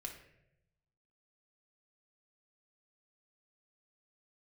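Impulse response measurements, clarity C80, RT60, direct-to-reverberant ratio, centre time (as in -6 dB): 10.0 dB, 0.85 s, 0.5 dB, 22 ms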